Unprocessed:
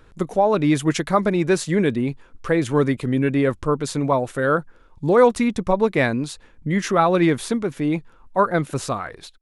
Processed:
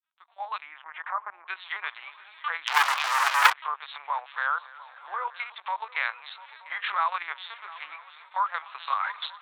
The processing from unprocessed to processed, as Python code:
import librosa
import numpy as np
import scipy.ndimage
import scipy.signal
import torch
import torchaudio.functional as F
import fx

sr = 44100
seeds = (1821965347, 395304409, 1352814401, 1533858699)

p1 = fx.fade_in_head(x, sr, length_s=1.51)
p2 = fx.recorder_agc(p1, sr, target_db=-8.0, rise_db_per_s=13.0, max_gain_db=30)
p3 = fx.peak_eq(p2, sr, hz=1600.0, db=-8.5, octaves=1.5)
p4 = p3 + fx.echo_feedback(p3, sr, ms=256, feedback_pct=59, wet_db=-21.0, dry=0)
p5 = fx.lpc_vocoder(p4, sr, seeds[0], excitation='pitch_kept', order=8)
p6 = fx.env_lowpass_down(p5, sr, base_hz=1800.0, full_db=-12.0)
p7 = fx.echo_swing(p6, sr, ms=929, ratio=3, feedback_pct=42, wet_db=-18.0)
p8 = fx.leveller(p7, sr, passes=5, at=(2.67, 3.53))
p9 = scipy.signal.sosfilt(scipy.signal.butter(6, 1000.0, 'highpass', fs=sr, output='sos'), p8)
p10 = fx.level_steps(p9, sr, step_db=20)
p11 = p9 + F.gain(torch.from_numpy(p10), 2.0).numpy()
y = fx.lowpass(p11, sr, hz=fx.line((0.6, 2600.0), (1.47, 1200.0)), slope=24, at=(0.6, 1.47), fade=0.02)